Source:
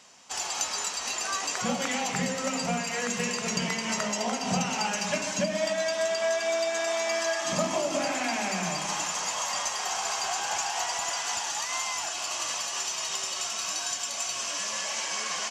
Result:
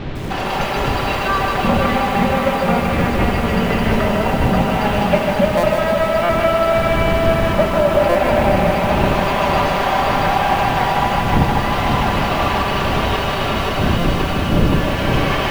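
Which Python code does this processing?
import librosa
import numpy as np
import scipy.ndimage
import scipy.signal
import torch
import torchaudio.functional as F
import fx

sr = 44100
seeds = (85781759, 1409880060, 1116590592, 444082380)

p1 = fx.lower_of_two(x, sr, delay_ms=5.1)
p2 = fx.dmg_wind(p1, sr, seeds[0], corner_hz=180.0, level_db=-37.0)
p3 = fx.quant_dither(p2, sr, seeds[1], bits=6, dither='triangular')
p4 = p2 + F.gain(torch.from_numpy(p3), -2.0).numpy()
p5 = scipy.signal.sosfilt(scipy.signal.butter(4, 3600.0, 'lowpass', fs=sr, output='sos'), p4)
p6 = fx.high_shelf(p5, sr, hz=2100.0, db=-9.5)
p7 = fx.rider(p6, sr, range_db=4, speed_s=0.5)
p8 = fx.peak_eq(p7, sr, hz=530.0, db=4.5, octaves=1.4)
p9 = fx.echo_feedback(p8, sr, ms=528, feedback_pct=60, wet_db=-6.0)
p10 = fx.buffer_glitch(p9, sr, at_s=(5.57, 6.23, 8.09, 13.98), block=256, repeats=10)
p11 = fx.echo_crushed(p10, sr, ms=153, feedback_pct=55, bits=7, wet_db=-4.5)
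y = F.gain(torch.from_numpy(p11), 8.0).numpy()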